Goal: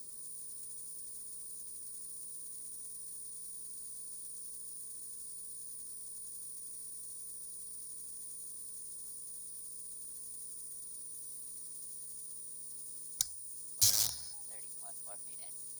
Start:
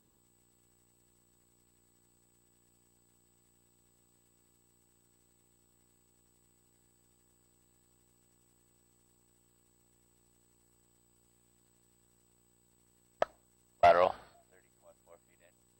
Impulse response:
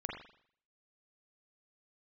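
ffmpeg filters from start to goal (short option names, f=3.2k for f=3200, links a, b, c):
-filter_complex "[0:a]acrossover=split=140|3000[a][b][c];[b]acompressor=threshold=-49dB:ratio=4[d];[a][d][c]amix=inputs=3:normalize=0,acrossover=split=120|2200[e][f][g];[f]aeval=exprs='(mod(178*val(0)+1,2)-1)/178':c=same[h];[e][h][g]amix=inputs=3:normalize=0,aexciter=amount=13.5:drive=1.7:freq=3.6k,asetrate=52444,aresample=44100,atempo=0.840896,volume=3.5dB"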